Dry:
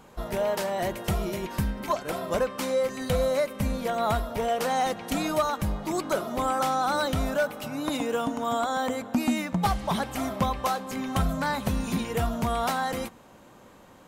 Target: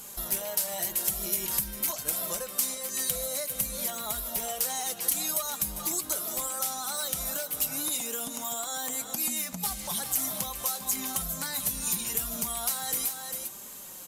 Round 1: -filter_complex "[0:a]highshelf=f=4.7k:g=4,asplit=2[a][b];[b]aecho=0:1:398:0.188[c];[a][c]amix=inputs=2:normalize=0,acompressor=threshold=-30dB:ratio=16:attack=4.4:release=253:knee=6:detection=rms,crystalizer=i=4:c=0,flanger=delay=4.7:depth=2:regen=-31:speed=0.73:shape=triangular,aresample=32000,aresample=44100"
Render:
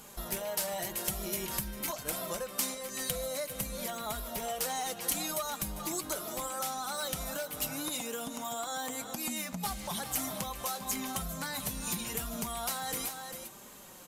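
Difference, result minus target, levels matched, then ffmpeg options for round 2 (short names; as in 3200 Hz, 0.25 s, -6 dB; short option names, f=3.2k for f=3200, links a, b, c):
4000 Hz band +3.0 dB
-filter_complex "[0:a]highshelf=f=4.7k:g=16,asplit=2[a][b];[b]aecho=0:1:398:0.188[c];[a][c]amix=inputs=2:normalize=0,acompressor=threshold=-30dB:ratio=16:attack=4.4:release=253:knee=6:detection=rms,crystalizer=i=4:c=0,flanger=delay=4.7:depth=2:regen=-31:speed=0.73:shape=triangular,aresample=32000,aresample=44100"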